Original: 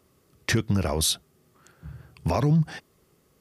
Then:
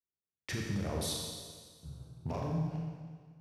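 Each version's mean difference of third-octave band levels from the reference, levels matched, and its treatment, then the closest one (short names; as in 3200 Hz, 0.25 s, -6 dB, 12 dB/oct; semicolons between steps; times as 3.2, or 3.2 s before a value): 8.5 dB: Wiener smoothing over 25 samples; gate -52 dBFS, range -38 dB; limiter -22 dBFS, peak gain reduction 10.5 dB; Schroeder reverb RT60 1.7 s, combs from 29 ms, DRR -1.5 dB; gain -7 dB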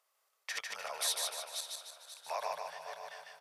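17.0 dB: regenerating reverse delay 0.268 s, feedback 45%, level -3.5 dB; random-step tremolo 3.5 Hz; inverse Chebyshev high-pass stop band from 320 Hz, stop band 40 dB; feedback echo 0.15 s, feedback 45%, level -3.5 dB; gain -7 dB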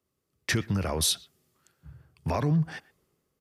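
3.0 dB: dynamic EQ 1700 Hz, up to +4 dB, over -43 dBFS, Q 1; in parallel at 0 dB: limiter -19.5 dBFS, peak gain reduction 10 dB; on the sum: speakerphone echo 0.12 s, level -20 dB; three-band expander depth 40%; gain -8.5 dB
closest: third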